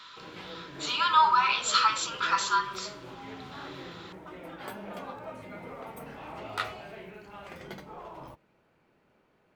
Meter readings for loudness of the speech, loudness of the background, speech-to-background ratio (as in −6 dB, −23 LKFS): −25.0 LKFS, −43.0 LKFS, 18.0 dB